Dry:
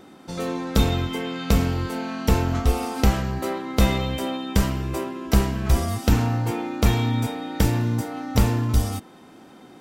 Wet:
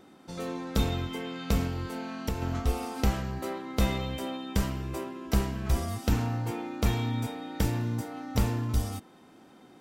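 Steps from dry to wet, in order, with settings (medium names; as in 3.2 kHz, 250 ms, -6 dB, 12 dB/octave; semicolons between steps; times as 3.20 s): 1.66–2.42 s: compression 5:1, threshold -20 dBFS, peak gain reduction 7.5 dB; trim -7.5 dB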